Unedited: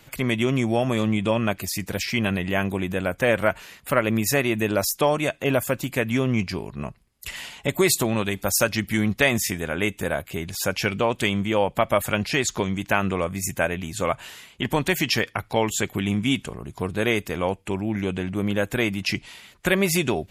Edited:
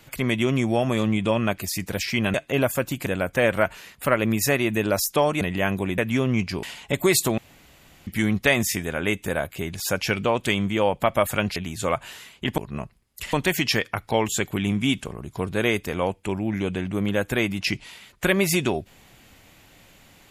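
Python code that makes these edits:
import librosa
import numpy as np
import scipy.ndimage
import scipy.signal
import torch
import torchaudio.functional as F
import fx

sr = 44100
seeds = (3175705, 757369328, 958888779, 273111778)

y = fx.edit(x, sr, fx.swap(start_s=2.34, length_s=0.57, other_s=5.26, other_length_s=0.72),
    fx.move(start_s=6.63, length_s=0.75, to_s=14.75),
    fx.room_tone_fill(start_s=8.13, length_s=0.69),
    fx.cut(start_s=12.31, length_s=1.42), tone=tone)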